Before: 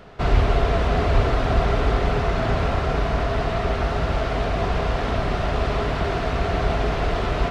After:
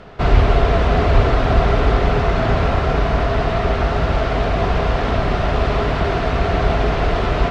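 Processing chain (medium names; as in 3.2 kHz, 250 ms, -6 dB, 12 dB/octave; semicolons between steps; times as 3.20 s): distance through air 51 m; trim +5 dB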